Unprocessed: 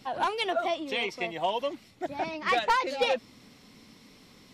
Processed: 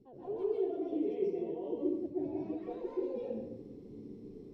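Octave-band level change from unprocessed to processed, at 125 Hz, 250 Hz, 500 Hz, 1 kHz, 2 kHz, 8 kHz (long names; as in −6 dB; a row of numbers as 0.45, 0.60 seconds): −1.5 dB, +3.5 dB, −3.5 dB, −23.0 dB, below −30 dB, below −30 dB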